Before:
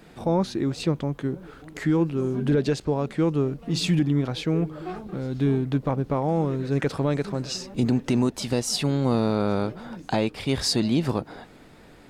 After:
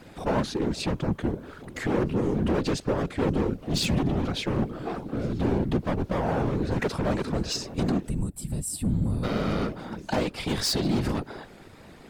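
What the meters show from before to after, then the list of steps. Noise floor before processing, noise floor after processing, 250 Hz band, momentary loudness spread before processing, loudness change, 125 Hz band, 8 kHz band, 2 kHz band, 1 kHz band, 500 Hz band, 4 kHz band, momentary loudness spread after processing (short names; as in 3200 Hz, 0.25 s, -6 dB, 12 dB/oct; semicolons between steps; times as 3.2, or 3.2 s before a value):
-49 dBFS, -48 dBFS, -3.0 dB, 8 LU, -2.5 dB, -3.0 dB, -1.0 dB, +0.5 dB, -0.5 dB, -2.5 dB, -1.5 dB, 7 LU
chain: spectral gain 8.07–9.24, 210–7300 Hz -19 dB; overloaded stage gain 23.5 dB; whisperiser; gain +1.5 dB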